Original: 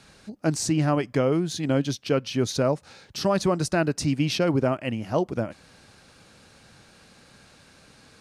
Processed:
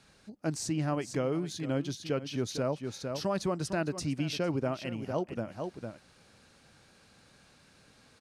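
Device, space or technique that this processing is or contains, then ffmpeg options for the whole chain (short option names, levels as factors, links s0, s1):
ducked delay: -filter_complex "[0:a]asplit=3[s0][s1][s2];[s1]adelay=455,volume=0.562[s3];[s2]apad=whole_len=381906[s4];[s3][s4]sidechaincompress=threshold=0.0251:ratio=8:attack=7.1:release=121[s5];[s0][s5]amix=inputs=2:normalize=0,volume=0.376"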